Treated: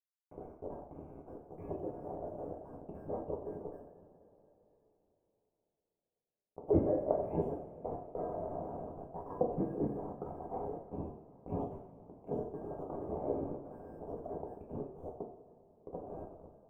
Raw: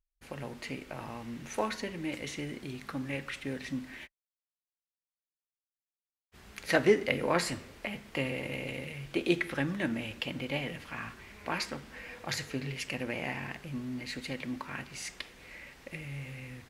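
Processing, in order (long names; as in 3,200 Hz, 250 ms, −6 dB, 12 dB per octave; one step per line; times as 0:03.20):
band-splitting scrambler in four parts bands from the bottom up 2143
high-pass filter 160 Hz 6 dB per octave
bit-depth reduction 6 bits, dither none
inverse Chebyshev low-pass filter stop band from 1,700 Hz, stop band 50 dB
coupled-rooms reverb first 0.55 s, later 3.8 s, from −18 dB, DRR −1.5 dB
level +3.5 dB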